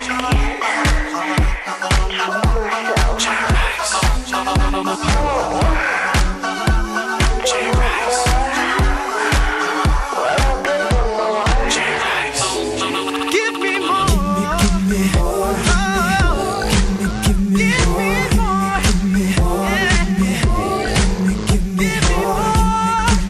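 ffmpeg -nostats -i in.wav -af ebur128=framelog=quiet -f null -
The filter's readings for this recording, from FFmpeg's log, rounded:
Integrated loudness:
  I:         -17.0 LUFS
  Threshold: -27.0 LUFS
Loudness range:
  LRA:         1.3 LU
  Threshold: -37.0 LUFS
  LRA low:   -17.6 LUFS
  LRA high:  -16.3 LUFS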